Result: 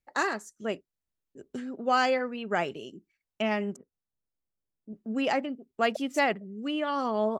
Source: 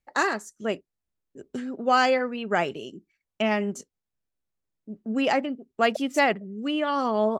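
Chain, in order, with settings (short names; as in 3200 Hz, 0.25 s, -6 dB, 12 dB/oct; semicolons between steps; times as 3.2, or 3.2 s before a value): 3.76–4.93 Bessel low-pass 1100 Hz, order 8; gain -4 dB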